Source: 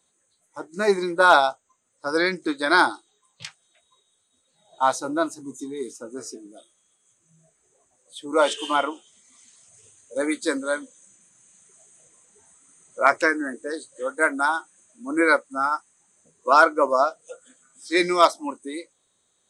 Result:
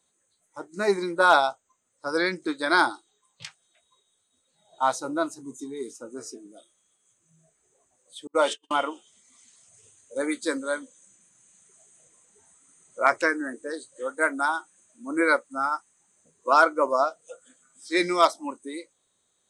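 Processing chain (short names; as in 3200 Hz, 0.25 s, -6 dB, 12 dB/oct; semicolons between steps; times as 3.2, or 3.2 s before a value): 8.27–8.71 gate -25 dBFS, range -44 dB; gain -3 dB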